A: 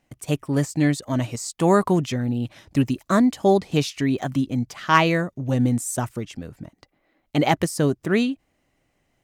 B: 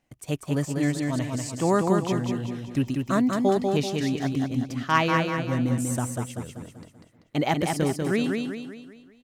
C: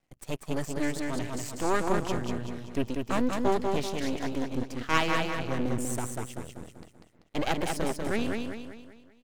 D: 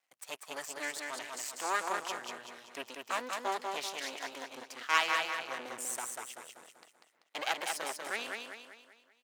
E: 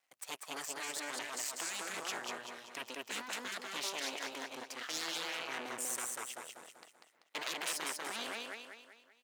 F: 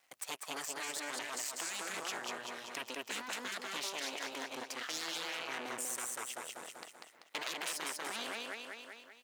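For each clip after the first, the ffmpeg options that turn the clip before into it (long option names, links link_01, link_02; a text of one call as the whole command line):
ffmpeg -i in.wav -af "aecho=1:1:193|386|579|772|965|1158:0.631|0.284|0.128|0.0575|0.0259|0.0116,volume=-5dB" out.wav
ffmpeg -i in.wav -af "aeval=exprs='max(val(0),0)':channel_layout=same" out.wav
ffmpeg -i in.wav -af "highpass=920" out.wav
ffmpeg -i in.wav -af "afftfilt=real='re*lt(hypot(re,im),0.0398)':imag='im*lt(hypot(re,im),0.0398)':win_size=1024:overlap=0.75,volume=1.5dB" out.wav
ffmpeg -i in.wav -af "acompressor=threshold=-53dB:ratio=2,volume=9dB" out.wav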